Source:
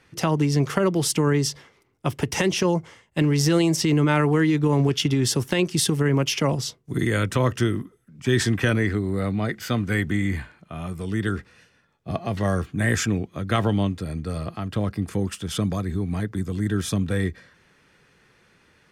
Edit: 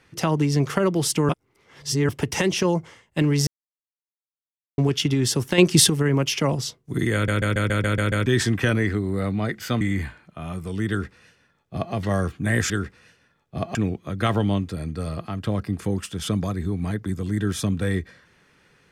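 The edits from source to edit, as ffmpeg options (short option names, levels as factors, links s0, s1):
-filter_complex "[0:a]asplit=18[s0][s1][s2][s3][s4][s5][s6][s7][s8][s9][s10][s11][s12][s13][s14][s15][s16][s17];[s0]atrim=end=1.292[s18];[s1]atrim=start=1.288:end=2.092,asetpts=PTS-STARTPTS,areverse[s19];[s2]atrim=start=2.088:end=3.47,asetpts=PTS-STARTPTS,afade=t=out:st=1.378:d=0.004:c=hsin[s20];[s3]atrim=start=3.47:end=4.78,asetpts=PTS-STARTPTS,volume=0[s21];[s4]atrim=start=4.78:end=5.582,asetpts=PTS-STARTPTS,afade=t=in:d=0.004:c=hsin[s22];[s5]atrim=start=5.578:end=5.892,asetpts=PTS-STARTPTS,volume=2.24[s23];[s6]atrim=start=5.888:end=7.282[s24];[s7]atrim=start=7.138:end=7.282[s25];[s8]atrim=start=7.138:end=7.282[s26];[s9]atrim=start=7.138:end=7.282[s27];[s10]atrim=start=7.138:end=7.282[s28];[s11]atrim=start=7.138:end=7.282[s29];[s12]atrim=start=7.138:end=7.282[s30];[s13]atrim=start=7.138:end=7.282[s31];[s14]atrim=start=8.258:end=9.812[s32];[s15]atrim=start=10.148:end=13.042[s33];[s16]atrim=start=11.228:end=12.282[s34];[s17]atrim=start=13.038[s35];[s18][s19]acrossfade=d=0.004:c1=hsin:c2=hsin[s36];[s20][s21][s22]concat=n=3:v=0:a=1[s37];[s36][s37]acrossfade=d=0.004:c1=hsin:c2=hsin[s38];[s38][s23]acrossfade=d=0.004:c1=hsin:c2=hsin[s39];[s39][s24]acrossfade=d=0.004:c1=hsin:c2=hsin[s40];[s40][s25]acrossfade=d=0.004:c1=hsin:c2=hsin[s41];[s41][s26]acrossfade=d=0.004:c1=hsin:c2=hsin[s42];[s42][s27]acrossfade=d=0.004:c1=hsin:c2=hsin[s43];[s43][s28]acrossfade=d=0.004:c1=hsin:c2=hsin[s44];[s44][s29]acrossfade=d=0.004:c1=hsin:c2=hsin[s45];[s45][s30]acrossfade=d=0.004:c1=hsin:c2=hsin[s46];[s46][s31]acrossfade=d=0.004:c1=hsin:c2=hsin[s47];[s47][s32]acrossfade=d=0.004:c1=hsin:c2=hsin[s48];[s48][s33]acrossfade=d=0.004:c1=hsin:c2=hsin[s49];[s49][s34]acrossfade=d=0.004:c1=hsin:c2=hsin[s50];[s50][s35]acrossfade=d=0.004:c1=hsin:c2=hsin"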